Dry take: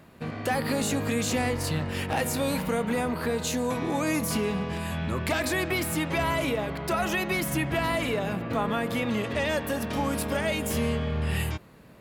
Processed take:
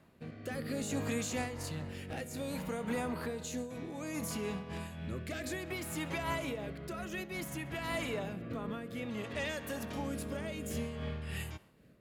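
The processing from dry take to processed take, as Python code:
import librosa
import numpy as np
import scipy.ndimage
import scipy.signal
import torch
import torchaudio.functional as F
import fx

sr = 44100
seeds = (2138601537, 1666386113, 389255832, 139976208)

p1 = fx.rotary(x, sr, hz=0.6)
p2 = p1 + fx.echo_thinned(p1, sr, ms=66, feedback_pct=61, hz=420.0, wet_db=-22, dry=0)
p3 = fx.dynamic_eq(p2, sr, hz=6800.0, q=6.2, threshold_db=-59.0, ratio=4.0, max_db=6)
p4 = fx.am_noise(p3, sr, seeds[0], hz=5.7, depth_pct=65)
y = p4 * 10.0 ** (-6.0 / 20.0)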